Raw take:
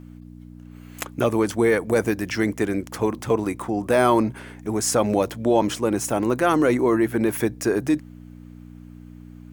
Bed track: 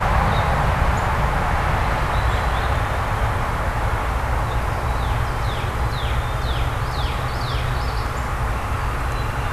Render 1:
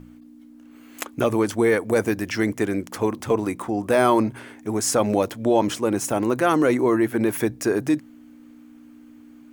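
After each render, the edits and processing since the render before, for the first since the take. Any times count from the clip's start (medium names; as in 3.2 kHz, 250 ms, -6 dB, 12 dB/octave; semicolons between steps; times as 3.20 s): de-hum 60 Hz, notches 3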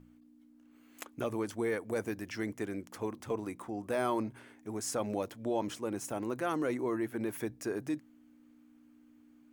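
trim -14 dB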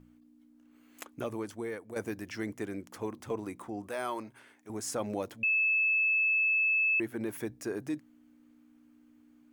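1.07–1.96 s: fade out, to -8.5 dB; 3.88–4.70 s: bass shelf 430 Hz -12 dB; 5.43–7.00 s: bleep 2.61 kHz -24 dBFS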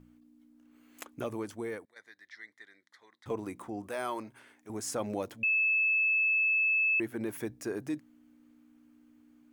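1.85–3.26 s: two resonant band-passes 2.7 kHz, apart 0.97 oct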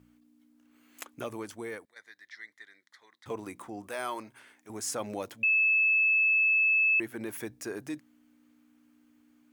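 high-pass 44 Hz; tilt shelf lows -3.5 dB, about 820 Hz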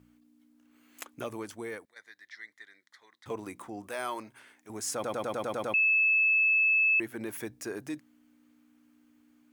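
4.94 s: stutter in place 0.10 s, 8 plays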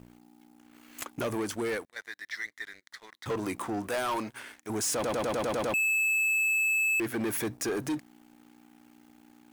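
peak limiter -25 dBFS, peak gain reduction 4.5 dB; waveshaping leveller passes 3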